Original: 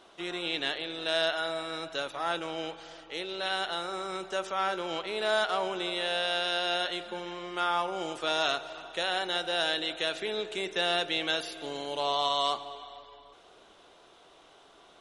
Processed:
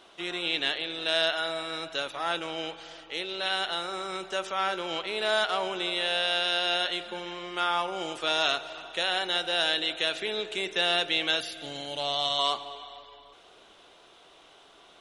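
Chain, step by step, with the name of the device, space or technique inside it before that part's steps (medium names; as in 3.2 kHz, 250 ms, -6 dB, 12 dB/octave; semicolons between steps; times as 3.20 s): presence and air boost (peaking EQ 2.8 kHz +4.5 dB 1.4 oct; treble shelf 9.7 kHz +4 dB); 11.40–12.39 s: graphic EQ with 31 bands 125 Hz +9 dB, 400 Hz -10 dB, 1 kHz -11 dB, 2.5 kHz -3 dB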